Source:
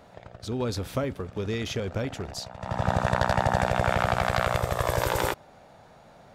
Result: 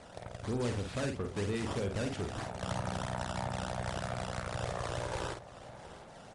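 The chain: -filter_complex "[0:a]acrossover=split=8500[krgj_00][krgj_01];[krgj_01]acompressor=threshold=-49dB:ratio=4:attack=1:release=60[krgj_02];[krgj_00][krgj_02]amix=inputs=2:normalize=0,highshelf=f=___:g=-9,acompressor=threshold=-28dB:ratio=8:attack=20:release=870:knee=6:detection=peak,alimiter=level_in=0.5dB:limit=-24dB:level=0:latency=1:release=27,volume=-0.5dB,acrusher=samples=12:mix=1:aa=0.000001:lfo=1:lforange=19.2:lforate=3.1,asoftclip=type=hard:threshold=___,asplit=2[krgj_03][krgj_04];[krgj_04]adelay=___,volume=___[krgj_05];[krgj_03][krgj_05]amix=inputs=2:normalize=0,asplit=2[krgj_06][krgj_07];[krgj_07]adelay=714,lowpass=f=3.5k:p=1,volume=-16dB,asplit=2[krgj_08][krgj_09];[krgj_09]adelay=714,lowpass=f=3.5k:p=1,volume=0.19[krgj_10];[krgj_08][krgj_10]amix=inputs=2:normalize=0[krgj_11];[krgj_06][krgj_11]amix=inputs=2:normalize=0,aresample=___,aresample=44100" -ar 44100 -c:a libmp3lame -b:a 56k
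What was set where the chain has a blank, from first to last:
7k, -30dB, 49, -5.5dB, 22050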